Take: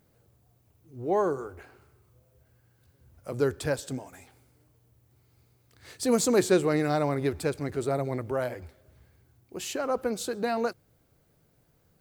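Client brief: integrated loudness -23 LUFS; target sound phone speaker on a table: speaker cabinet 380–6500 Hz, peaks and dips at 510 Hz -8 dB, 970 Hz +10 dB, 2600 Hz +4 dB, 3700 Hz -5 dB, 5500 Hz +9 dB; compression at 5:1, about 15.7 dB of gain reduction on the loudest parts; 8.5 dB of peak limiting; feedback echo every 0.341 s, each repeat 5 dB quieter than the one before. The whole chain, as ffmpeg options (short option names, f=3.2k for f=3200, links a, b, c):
-af "acompressor=threshold=-36dB:ratio=5,alimiter=level_in=9dB:limit=-24dB:level=0:latency=1,volume=-9dB,highpass=f=380:w=0.5412,highpass=f=380:w=1.3066,equalizer=f=510:t=q:w=4:g=-8,equalizer=f=970:t=q:w=4:g=10,equalizer=f=2.6k:t=q:w=4:g=4,equalizer=f=3.7k:t=q:w=4:g=-5,equalizer=f=5.5k:t=q:w=4:g=9,lowpass=f=6.5k:w=0.5412,lowpass=f=6.5k:w=1.3066,aecho=1:1:341|682|1023|1364|1705|2046|2387:0.562|0.315|0.176|0.0988|0.0553|0.031|0.0173,volume=22.5dB"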